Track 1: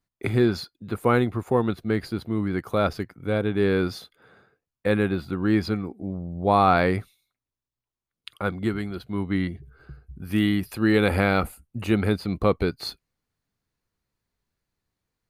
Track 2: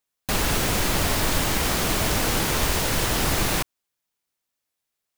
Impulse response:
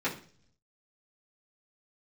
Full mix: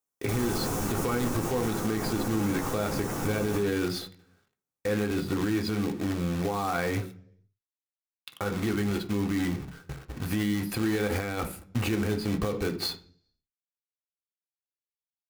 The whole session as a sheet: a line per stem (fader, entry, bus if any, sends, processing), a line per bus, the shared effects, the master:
+2.5 dB, 0.00 s, send -11 dB, companded quantiser 4-bit; gate with hold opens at -41 dBFS; compressor 6:1, threshold -25 dBFS, peak gain reduction 11.5 dB
-6.0 dB, 0.00 s, send -10 dB, band shelf 2800 Hz -11 dB; auto duck -11 dB, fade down 1.90 s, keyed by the first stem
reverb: on, RT60 0.45 s, pre-delay 3 ms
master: limiter -19 dBFS, peak gain reduction 11.5 dB

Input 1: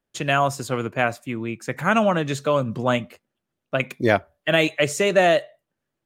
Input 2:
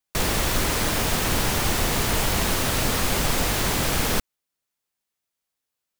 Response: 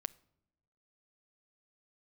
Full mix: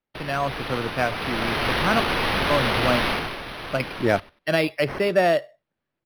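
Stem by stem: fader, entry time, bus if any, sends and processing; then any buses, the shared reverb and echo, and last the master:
-7.0 dB, 0.00 s, muted 2–2.5, no send, no echo send, dry
1.05 s -15.5 dB -> 1.66 s -7 dB -> 3.09 s -7 dB -> 3.38 s -19 dB, 0.00 s, no send, echo send -15 dB, tone controls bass -6 dB, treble +9 dB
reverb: off
echo: feedback echo 95 ms, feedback 19%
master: AGC gain up to 5.5 dB; decimation joined by straight lines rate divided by 6×

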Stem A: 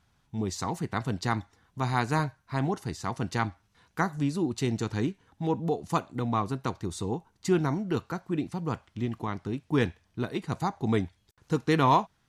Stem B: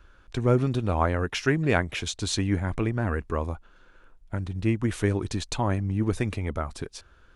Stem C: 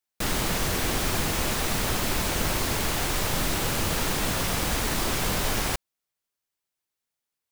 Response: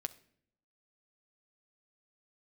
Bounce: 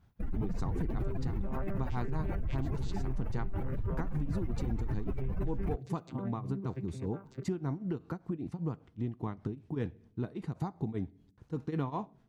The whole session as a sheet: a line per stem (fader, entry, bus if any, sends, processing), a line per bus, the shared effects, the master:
+0.5 dB, 0.00 s, bus A, send -13.5 dB, tilt shelf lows +6 dB, about 690 Hz; tremolo triangle 5.1 Hz, depth 95%; high shelf 4900 Hz -6 dB
-5.0 dB, 0.55 s, bus A, no send, arpeggiated vocoder bare fifth, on C3, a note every 0.152 s
-3.0 dB, 0.00 s, no bus, no send, spectral contrast raised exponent 2.9; band shelf 5400 Hz -13 dB
bus A: 0.0 dB, compressor, threshold -34 dBFS, peak gain reduction 16.5 dB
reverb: on, RT60 0.65 s, pre-delay 7 ms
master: compressor 2:1, threshold -30 dBFS, peak gain reduction 4.5 dB

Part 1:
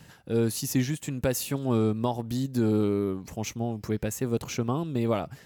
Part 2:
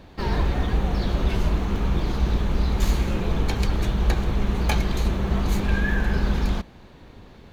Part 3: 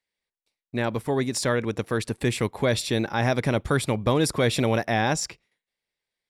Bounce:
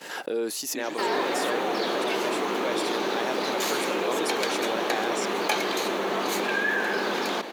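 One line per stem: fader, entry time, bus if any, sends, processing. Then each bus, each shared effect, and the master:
-5.0 dB, 0.00 s, no send, expander -42 dBFS; high shelf 7400 Hz -7 dB; backwards sustainer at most 83 dB/s; auto duck -8 dB, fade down 0.25 s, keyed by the third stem
+1.0 dB, 0.80 s, no send, dry
-11.5 dB, 0.00 s, no send, dry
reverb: off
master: HPF 330 Hz 24 dB/oct; fast leveller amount 50%

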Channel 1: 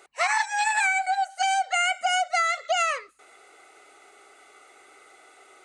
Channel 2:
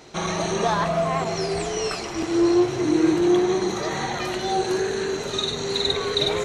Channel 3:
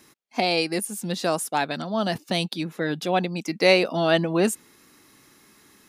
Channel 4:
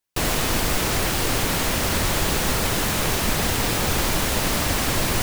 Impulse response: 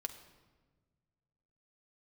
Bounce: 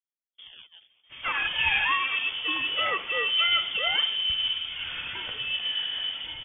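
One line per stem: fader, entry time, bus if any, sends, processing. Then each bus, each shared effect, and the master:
-2.0 dB, 1.05 s, bus A, send -5 dB, hard clip -18 dBFS, distortion -19 dB
-13.0 dB, 0.95 s, bus A, send -4.5 dB, AGC gain up to 11.5 dB
-15.5 dB, 0.00 s, bus A, no send, decimation with a swept rate 38×, swing 100% 0.91 Hz
off
bus A: 0.0 dB, compressor, threshold -32 dBFS, peak gain reduction 14 dB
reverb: on, RT60 1.4 s, pre-delay 5 ms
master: bell 98 Hz +9.5 dB 0.25 oct; inverted band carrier 3400 Hz; three-band expander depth 100%

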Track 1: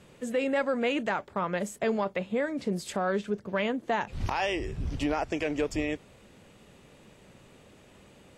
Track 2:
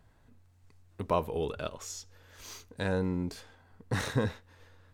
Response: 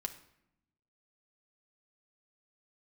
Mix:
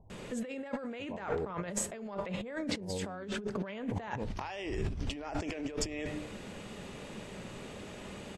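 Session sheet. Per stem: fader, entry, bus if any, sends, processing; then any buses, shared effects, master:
-2.5 dB, 0.10 s, send -3 dB, notches 50/100/150 Hz
-3.5 dB, 0.00 s, no send, elliptic low-pass 920 Hz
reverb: on, RT60 0.80 s, pre-delay 5 ms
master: LPF 9800 Hz 12 dB/oct; negative-ratio compressor -38 dBFS, ratio -1

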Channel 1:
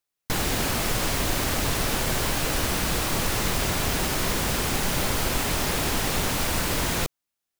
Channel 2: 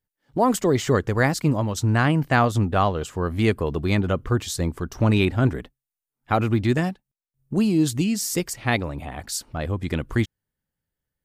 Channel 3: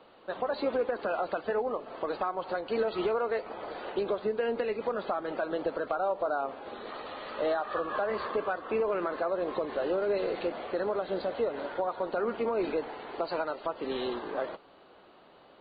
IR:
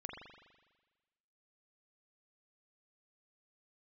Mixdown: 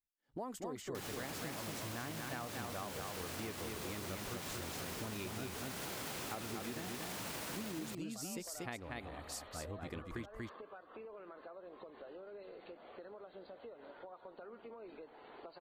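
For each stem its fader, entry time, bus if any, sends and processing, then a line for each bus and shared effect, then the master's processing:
+2.5 dB, 0.65 s, no send, echo send -9 dB, HPF 130 Hz; limiter -25.5 dBFS, peak gain reduction 11 dB; auto duck -11 dB, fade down 1.95 s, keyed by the second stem
-15.5 dB, 0.00 s, no send, echo send -4 dB, bell 130 Hz -6.5 dB 0.98 oct
-10.0 dB, 2.25 s, no send, no echo send, compressor 4:1, threshold -41 dBFS, peak gain reduction 13.5 dB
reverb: off
echo: echo 0.237 s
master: compressor, threshold -40 dBFS, peak gain reduction 11 dB

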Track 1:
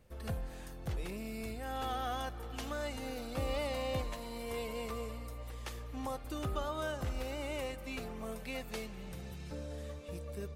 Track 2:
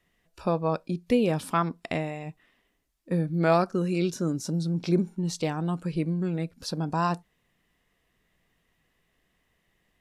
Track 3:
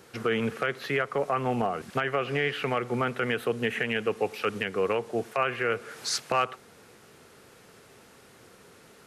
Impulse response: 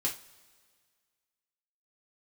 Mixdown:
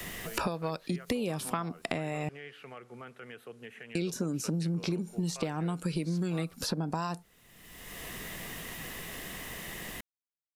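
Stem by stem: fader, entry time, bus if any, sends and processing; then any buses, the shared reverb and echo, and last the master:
off
-0.5 dB, 0.00 s, muted 2.29–3.95, no send, high shelf 5800 Hz +7 dB; three-band squash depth 100%
-19.0 dB, 0.00 s, no send, dry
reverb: off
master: high shelf 5800 Hz +4.5 dB; compressor 4:1, threshold -29 dBFS, peak gain reduction 9.5 dB

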